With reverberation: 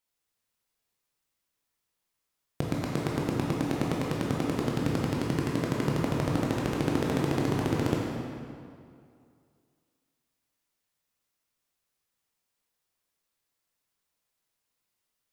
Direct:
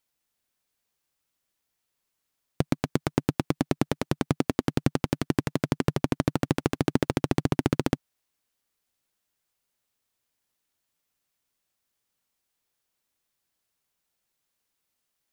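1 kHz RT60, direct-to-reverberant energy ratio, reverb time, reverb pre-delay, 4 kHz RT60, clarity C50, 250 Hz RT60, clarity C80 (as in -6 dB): 2.3 s, -3.5 dB, 2.3 s, 15 ms, 1.7 s, -1.0 dB, 2.3 s, 0.5 dB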